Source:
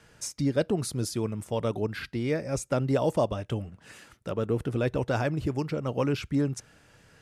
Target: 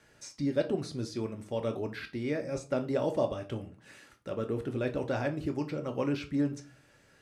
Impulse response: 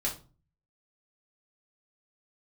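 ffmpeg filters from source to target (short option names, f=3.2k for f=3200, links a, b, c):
-filter_complex "[0:a]acrossover=split=6100[a][b];[b]acompressor=threshold=-58dB:ratio=4:attack=1:release=60[c];[a][c]amix=inputs=2:normalize=0,asplit=2[d][e];[e]highpass=270[f];[1:a]atrim=start_sample=2205,lowshelf=f=240:g=7[g];[f][g]afir=irnorm=-1:irlink=0,volume=-5.5dB[h];[d][h]amix=inputs=2:normalize=0,volume=-8.5dB"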